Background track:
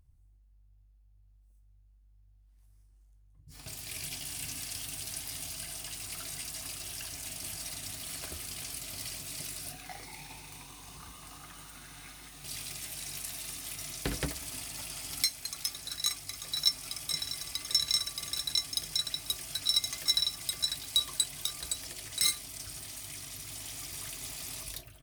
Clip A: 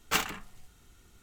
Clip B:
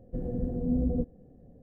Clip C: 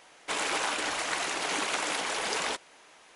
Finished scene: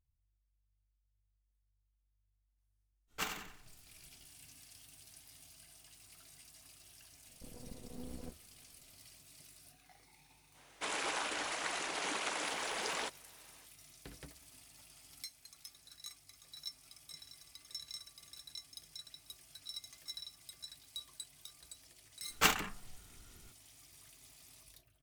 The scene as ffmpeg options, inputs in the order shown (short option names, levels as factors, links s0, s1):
-filter_complex "[1:a]asplit=2[s0][s1];[0:a]volume=0.119[s2];[s0]aecho=1:1:91|182|273|364:0.422|0.156|0.0577|0.0214[s3];[2:a]aeval=exprs='max(val(0),0)':c=same[s4];[s3]atrim=end=1.22,asetpts=PTS-STARTPTS,volume=0.282,afade=t=in:d=0.05,afade=t=out:st=1.17:d=0.05,adelay=3070[s5];[s4]atrim=end=1.62,asetpts=PTS-STARTPTS,volume=0.158,afade=t=in:d=0.004:c=hsin,afade=t=out:st=1.616:d=0.004:c=hsin,adelay=7280[s6];[3:a]atrim=end=3.15,asetpts=PTS-STARTPTS,volume=0.422,afade=t=in:d=0.05,afade=t=out:st=3.1:d=0.05,adelay=10530[s7];[s1]atrim=end=1.22,asetpts=PTS-STARTPTS,volume=0.944,afade=t=in:d=0.004:c=hsin,afade=t=out:st=1.216:d=0.004:c=hsin,adelay=22300[s8];[s2][s5][s6][s7][s8]amix=inputs=5:normalize=0"